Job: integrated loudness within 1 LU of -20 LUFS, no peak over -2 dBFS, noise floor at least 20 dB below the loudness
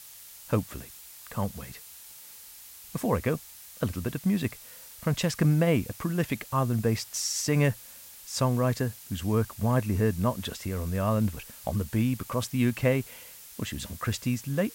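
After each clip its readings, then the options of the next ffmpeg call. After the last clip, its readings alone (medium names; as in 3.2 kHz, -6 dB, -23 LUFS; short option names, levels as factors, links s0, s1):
noise floor -48 dBFS; noise floor target -49 dBFS; loudness -28.5 LUFS; peak level -11.5 dBFS; loudness target -20.0 LUFS
-> -af "afftdn=nr=6:nf=-48"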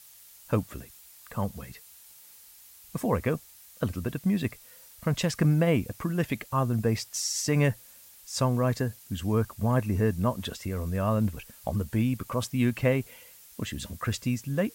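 noise floor -52 dBFS; loudness -29.0 LUFS; peak level -11.5 dBFS; loudness target -20.0 LUFS
-> -af "volume=2.82"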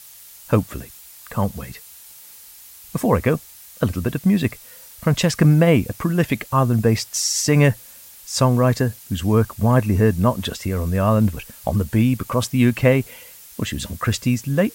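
loudness -20.0 LUFS; peak level -2.5 dBFS; noise floor -43 dBFS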